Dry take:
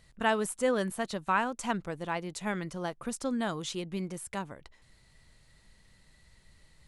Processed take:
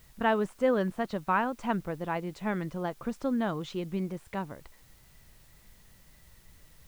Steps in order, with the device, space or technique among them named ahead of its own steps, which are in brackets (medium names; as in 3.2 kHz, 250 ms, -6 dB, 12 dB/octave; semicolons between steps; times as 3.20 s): cassette deck with a dirty head (tape spacing loss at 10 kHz 26 dB; wow and flutter 25 cents; white noise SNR 30 dB); trim +3.5 dB